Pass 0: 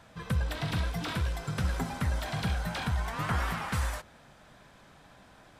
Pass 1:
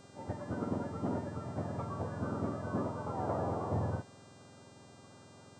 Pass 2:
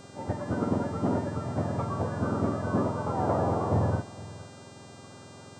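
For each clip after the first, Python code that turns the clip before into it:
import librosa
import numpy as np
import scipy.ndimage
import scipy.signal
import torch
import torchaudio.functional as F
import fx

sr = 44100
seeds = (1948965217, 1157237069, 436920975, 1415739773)

y1 = fx.octave_mirror(x, sr, pivot_hz=960.0)
y1 = scipy.signal.sosfilt(scipy.signal.butter(4, 1400.0, 'lowpass', fs=sr, output='sos'), y1)
y1 = fx.dmg_buzz(y1, sr, base_hz=400.0, harmonics=22, level_db=-63.0, tilt_db=-2, odd_only=False)
y2 = y1 + 10.0 ** (-19.0 / 20.0) * np.pad(y1, (int(465 * sr / 1000.0), 0))[:len(y1)]
y2 = y2 * 10.0 ** (8.0 / 20.0)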